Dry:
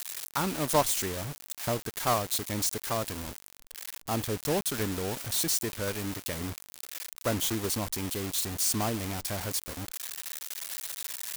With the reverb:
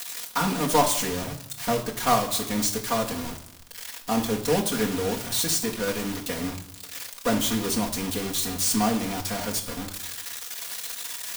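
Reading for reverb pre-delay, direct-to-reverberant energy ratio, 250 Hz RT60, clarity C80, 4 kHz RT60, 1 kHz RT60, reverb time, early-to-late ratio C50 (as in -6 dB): 4 ms, -4.0 dB, 0.95 s, 14.0 dB, 0.65 s, 0.85 s, 0.75 s, 11.0 dB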